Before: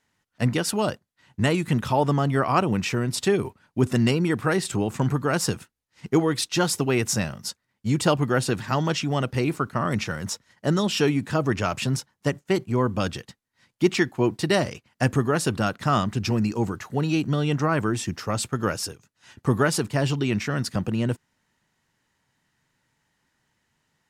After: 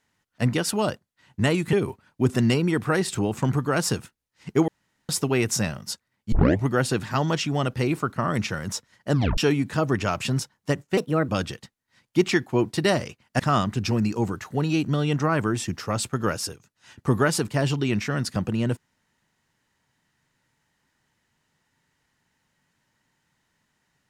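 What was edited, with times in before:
0:01.73–0:03.30: remove
0:06.25–0:06.66: fill with room tone
0:07.89: tape start 0.35 s
0:10.69: tape stop 0.26 s
0:12.54–0:12.94: play speed 127%
0:15.05–0:15.79: remove

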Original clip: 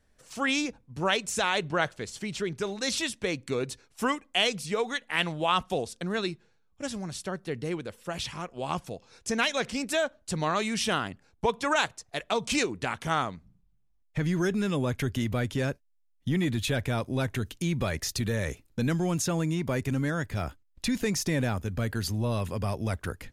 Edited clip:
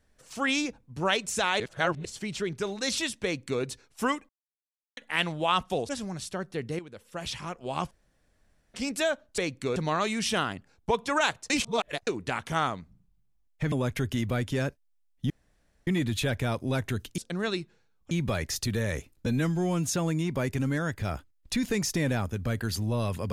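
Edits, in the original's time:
0:01.60–0:02.05: reverse
0:03.24–0:03.62: duplicate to 0:10.31
0:04.29–0:04.97: silence
0:05.89–0:06.82: move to 0:17.64
0:07.72–0:08.29: fade in, from −13 dB
0:08.84–0:09.67: fill with room tone
0:12.05–0:12.62: reverse
0:14.27–0:14.75: remove
0:16.33: splice in room tone 0.57 s
0:18.79–0:19.21: time-stretch 1.5×

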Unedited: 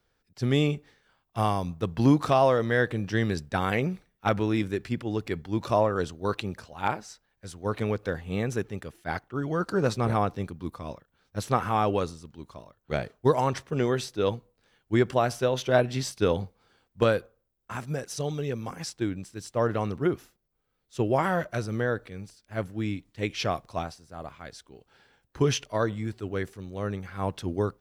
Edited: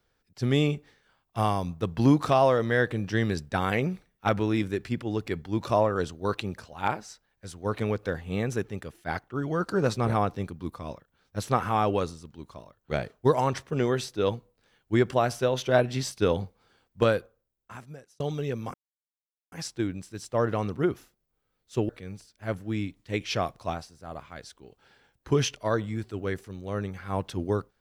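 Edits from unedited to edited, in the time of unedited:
0:17.09–0:18.20: fade out
0:18.74: splice in silence 0.78 s
0:21.11–0:21.98: remove

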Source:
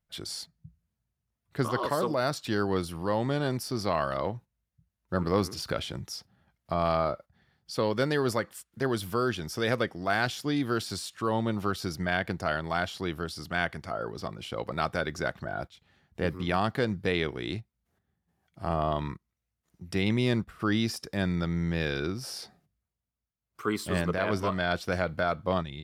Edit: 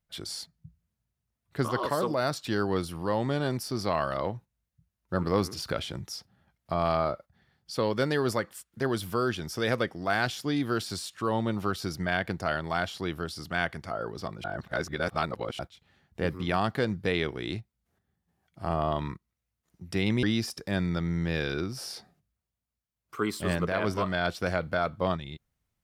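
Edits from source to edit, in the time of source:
0:14.44–0:15.59: reverse
0:20.23–0:20.69: remove

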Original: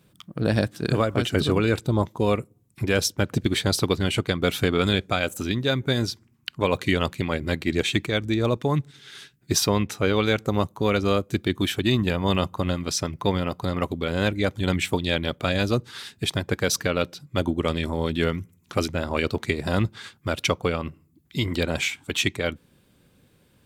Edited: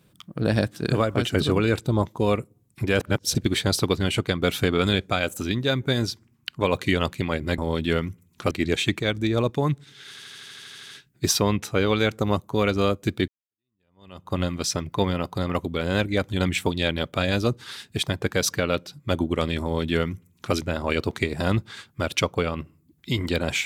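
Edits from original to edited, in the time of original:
0:03.00–0:03.35: reverse
0:09.16: stutter 0.08 s, 11 plays
0:11.55–0:12.61: fade in exponential
0:17.89–0:18.82: duplicate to 0:07.58

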